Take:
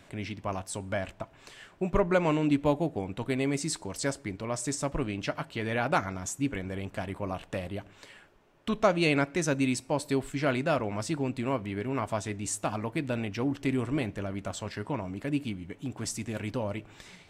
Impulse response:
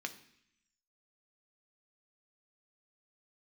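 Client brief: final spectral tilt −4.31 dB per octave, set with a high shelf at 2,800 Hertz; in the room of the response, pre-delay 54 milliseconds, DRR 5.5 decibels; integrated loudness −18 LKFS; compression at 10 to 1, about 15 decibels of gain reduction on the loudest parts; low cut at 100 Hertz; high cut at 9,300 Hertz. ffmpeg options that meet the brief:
-filter_complex "[0:a]highpass=100,lowpass=9300,highshelf=frequency=2800:gain=3.5,acompressor=threshold=-34dB:ratio=10,asplit=2[link_01][link_02];[1:a]atrim=start_sample=2205,adelay=54[link_03];[link_02][link_03]afir=irnorm=-1:irlink=0,volume=-6dB[link_04];[link_01][link_04]amix=inputs=2:normalize=0,volume=20.5dB"

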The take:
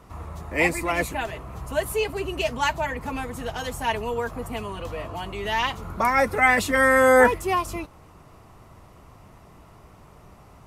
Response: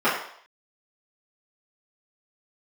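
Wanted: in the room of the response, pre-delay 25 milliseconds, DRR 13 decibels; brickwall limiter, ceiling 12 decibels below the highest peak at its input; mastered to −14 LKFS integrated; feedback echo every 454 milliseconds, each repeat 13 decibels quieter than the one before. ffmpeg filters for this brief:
-filter_complex "[0:a]alimiter=limit=-16dB:level=0:latency=1,aecho=1:1:454|908|1362:0.224|0.0493|0.0108,asplit=2[link_01][link_02];[1:a]atrim=start_sample=2205,adelay=25[link_03];[link_02][link_03]afir=irnorm=-1:irlink=0,volume=-32dB[link_04];[link_01][link_04]amix=inputs=2:normalize=0,volume=13.5dB"

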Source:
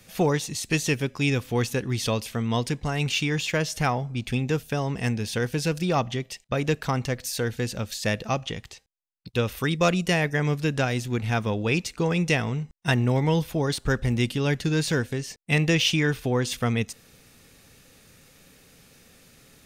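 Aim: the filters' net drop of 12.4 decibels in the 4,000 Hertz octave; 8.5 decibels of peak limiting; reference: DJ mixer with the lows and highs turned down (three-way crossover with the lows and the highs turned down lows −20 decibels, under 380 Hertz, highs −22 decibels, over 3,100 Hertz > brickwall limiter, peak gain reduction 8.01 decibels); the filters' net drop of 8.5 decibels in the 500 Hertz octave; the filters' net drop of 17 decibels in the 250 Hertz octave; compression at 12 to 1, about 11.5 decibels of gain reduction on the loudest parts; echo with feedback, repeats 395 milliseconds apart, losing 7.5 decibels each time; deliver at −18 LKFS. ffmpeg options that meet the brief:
ffmpeg -i in.wav -filter_complex "[0:a]equalizer=frequency=250:width_type=o:gain=-5.5,equalizer=frequency=500:width_type=o:gain=-5.5,equalizer=frequency=4000:width_type=o:gain=-8.5,acompressor=threshold=-32dB:ratio=12,alimiter=level_in=5.5dB:limit=-24dB:level=0:latency=1,volume=-5.5dB,acrossover=split=380 3100:gain=0.1 1 0.0794[link_01][link_02][link_03];[link_01][link_02][link_03]amix=inputs=3:normalize=0,aecho=1:1:395|790|1185|1580|1975:0.422|0.177|0.0744|0.0312|0.0131,volume=30dB,alimiter=limit=-6.5dB:level=0:latency=1" out.wav

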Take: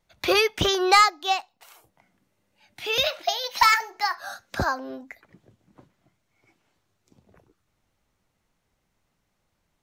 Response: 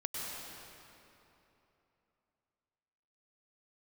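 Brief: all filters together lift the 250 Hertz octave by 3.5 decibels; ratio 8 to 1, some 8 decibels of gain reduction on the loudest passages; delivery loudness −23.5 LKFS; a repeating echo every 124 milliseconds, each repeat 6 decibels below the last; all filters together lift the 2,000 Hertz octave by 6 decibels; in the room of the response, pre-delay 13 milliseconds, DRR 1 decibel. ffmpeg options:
-filter_complex "[0:a]equalizer=frequency=250:width_type=o:gain=6,equalizer=frequency=2000:width_type=o:gain=7,acompressor=threshold=-17dB:ratio=8,aecho=1:1:124|248|372|496|620|744:0.501|0.251|0.125|0.0626|0.0313|0.0157,asplit=2[link_01][link_02];[1:a]atrim=start_sample=2205,adelay=13[link_03];[link_02][link_03]afir=irnorm=-1:irlink=0,volume=-4dB[link_04];[link_01][link_04]amix=inputs=2:normalize=0,volume=-2.5dB"

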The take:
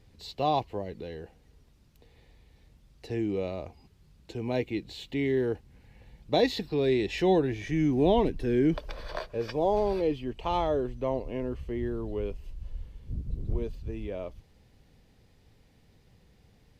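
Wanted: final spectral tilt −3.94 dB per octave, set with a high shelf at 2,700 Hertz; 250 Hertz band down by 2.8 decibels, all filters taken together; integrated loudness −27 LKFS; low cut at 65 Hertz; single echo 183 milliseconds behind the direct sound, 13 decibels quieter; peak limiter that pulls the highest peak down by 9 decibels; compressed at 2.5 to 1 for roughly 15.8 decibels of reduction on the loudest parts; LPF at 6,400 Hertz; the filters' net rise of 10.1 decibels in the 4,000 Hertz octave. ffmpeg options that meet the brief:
ffmpeg -i in.wav -af "highpass=65,lowpass=6400,equalizer=frequency=250:width_type=o:gain=-4,highshelf=frequency=2700:gain=6,equalizer=frequency=4000:width_type=o:gain=7.5,acompressor=threshold=-42dB:ratio=2.5,alimiter=level_in=7dB:limit=-24dB:level=0:latency=1,volume=-7dB,aecho=1:1:183:0.224,volume=15.5dB" out.wav

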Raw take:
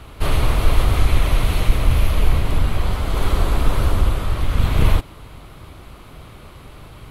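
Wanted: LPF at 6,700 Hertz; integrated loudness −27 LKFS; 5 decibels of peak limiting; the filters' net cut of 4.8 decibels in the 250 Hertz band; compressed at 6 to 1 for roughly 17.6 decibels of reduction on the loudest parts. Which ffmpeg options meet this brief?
ffmpeg -i in.wav -af "lowpass=6700,equalizer=frequency=250:width_type=o:gain=-7.5,acompressor=threshold=-28dB:ratio=6,volume=11.5dB,alimiter=limit=-13dB:level=0:latency=1" out.wav

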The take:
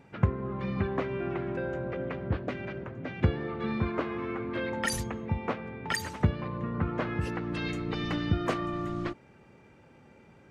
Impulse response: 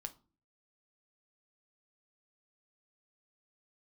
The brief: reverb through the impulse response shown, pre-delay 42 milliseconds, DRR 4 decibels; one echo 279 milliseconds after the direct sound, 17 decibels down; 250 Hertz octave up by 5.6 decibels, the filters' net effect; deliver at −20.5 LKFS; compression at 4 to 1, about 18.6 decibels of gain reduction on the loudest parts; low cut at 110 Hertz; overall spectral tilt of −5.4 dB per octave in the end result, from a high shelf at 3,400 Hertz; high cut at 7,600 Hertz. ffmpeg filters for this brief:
-filter_complex "[0:a]highpass=110,lowpass=7600,equalizer=frequency=250:width_type=o:gain=8,highshelf=frequency=3400:gain=-8.5,acompressor=threshold=-40dB:ratio=4,aecho=1:1:279:0.141,asplit=2[link_01][link_02];[1:a]atrim=start_sample=2205,adelay=42[link_03];[link_02][link_03]afir=irnorm=-1:irlink=0,volume=-0.5dB[link_04];[link_01][link_04]amix=inputs=2:normalize=0,volume=20dB"

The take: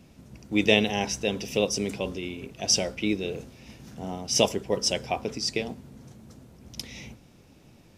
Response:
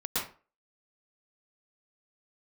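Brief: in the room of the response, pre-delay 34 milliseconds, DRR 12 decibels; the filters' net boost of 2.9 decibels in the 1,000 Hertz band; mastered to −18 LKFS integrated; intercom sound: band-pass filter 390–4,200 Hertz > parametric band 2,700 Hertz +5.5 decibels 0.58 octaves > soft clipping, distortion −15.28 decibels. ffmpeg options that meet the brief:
-filter_complex "[0:a]equalizer=frequency=1000:width_type=o:gain=4.5,asplit=2[link_01][link_02];[1:a]atrim=start_sample=2205,adelay=34[link_03];[link_02][link_03]afir=irnorm=-1:irlink=0,volume=-19dB[link_04];[link_01][link_04]amix=inputs=2:normalize=0,highpass=390,lowpass=4200,equalizer=frequency=2700:width_type=o:width=0.58:gain=5.5,asoftclip=threshold=-10.5dB,volume=10dB"

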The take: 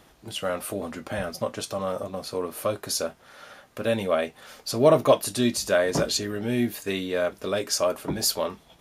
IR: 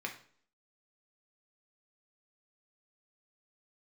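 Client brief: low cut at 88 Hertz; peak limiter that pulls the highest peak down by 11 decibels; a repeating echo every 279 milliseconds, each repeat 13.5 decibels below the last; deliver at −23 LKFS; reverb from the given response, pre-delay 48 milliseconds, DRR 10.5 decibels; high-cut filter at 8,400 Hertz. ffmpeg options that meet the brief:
-filter_complex "[0:a]highpass=88,lowpass=8400,alimiter=limit=-17dB:level=0:latency=1,aecho=1:1:279|558:0.211|0.0444,asplit=2[link_01][link_02];[1:a]atrim=start_sample=2205,adelay=48[link_03];[link_02][link_03]afir=irnorm=-1:irlink=0,volume=-12.5dB[link_04];[link_01][link_04]amix=inputs=2:normalize=0,volume=6dB"

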